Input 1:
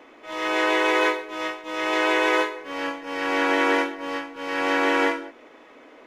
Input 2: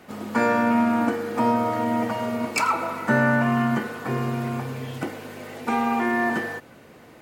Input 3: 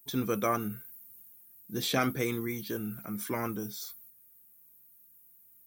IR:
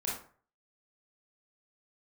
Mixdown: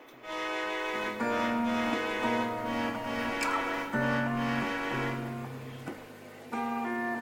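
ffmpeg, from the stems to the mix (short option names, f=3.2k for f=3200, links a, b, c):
-filter_complex "[0:a]asubboost=boost=11:cutoff=120,acompressor=threshold=-29dB:ratio=4,volume=-3dB[a];[1:a]adelay=850,volume=-10dB[b];[2:a]acompressor=threshold=-39dB:ratio=6,volume=-18.5dB[c];[a][b][c]amix=inputs=3:normalize=0"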